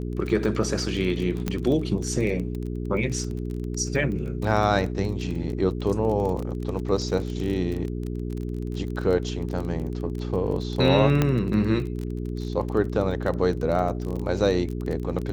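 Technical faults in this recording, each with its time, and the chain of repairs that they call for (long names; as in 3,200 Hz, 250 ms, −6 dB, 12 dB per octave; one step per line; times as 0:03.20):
surface crackle 23 per second −29 dBFS
mains hum 60 Hz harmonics 7 −30 dBFS
0:01.48: click −12 dBFS
0:11.22: click −8 dBFS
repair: click removal
hum removal 60 Hz, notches 7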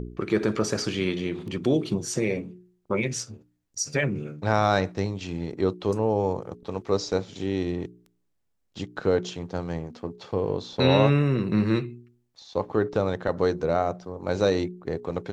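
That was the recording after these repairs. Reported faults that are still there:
0:01.48: click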